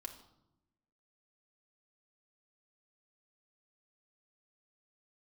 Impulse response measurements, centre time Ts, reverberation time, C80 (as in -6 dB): 14 ms, 0.85 s, 13.0 dB